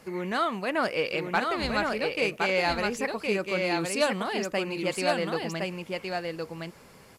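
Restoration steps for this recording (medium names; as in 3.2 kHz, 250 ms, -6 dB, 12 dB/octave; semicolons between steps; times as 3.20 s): clip repair -15 dBFS; expander -38 dBFS, range -21 dB; inverse comb 1065 ms -3.5 dB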